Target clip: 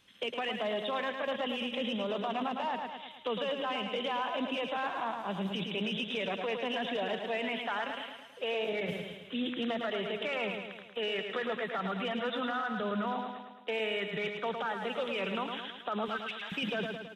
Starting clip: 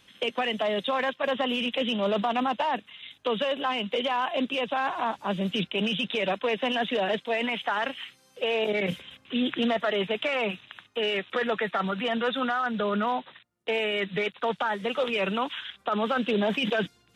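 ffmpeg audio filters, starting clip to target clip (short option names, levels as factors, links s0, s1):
-filter_complex "[0:a]asettb=1/sr,asplit=3[s0][s1][s2];[s0]atrim=end=16.084[s3];[s1]atrim=start=16.08:end=16.52,asetpts=PTS-STARTPTS,afade=t=in:d=0.004:c=qsin,afade=t=out:st=0.436:d=0.004:c=qsin,highpass=f=1200:w=0.5412,highpass=f=1200:w=1.3066[s4];[s2]atrim=start=16.516[s5];[s3][s4]acrossfade=d=0.004:c1=hsin:c2=qsin[s6];[s6][s5]acrossfade=d=0.004:c1=qsin:c2=hsin,aecho=1:1:108|216|324|432|540|648|756:0.473|0.26|0.143|0.0787|0.0433|0.0238|0.0131,alimiter=limit=0.119:level=0:latency=1:release=59,volume=0.473"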